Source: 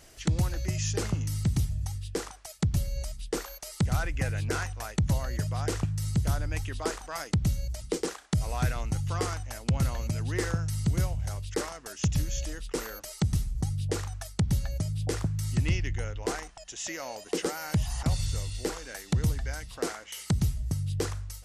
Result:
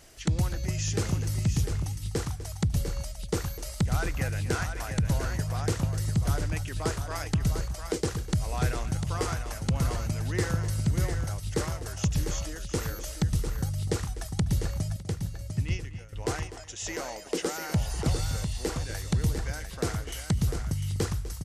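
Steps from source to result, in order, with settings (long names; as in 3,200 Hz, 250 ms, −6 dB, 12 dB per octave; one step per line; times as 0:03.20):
0:14.96–0:16.13: downward expander −20 dBFS
multi-tap delay 249/606/699 ms −15/−20/−7 dB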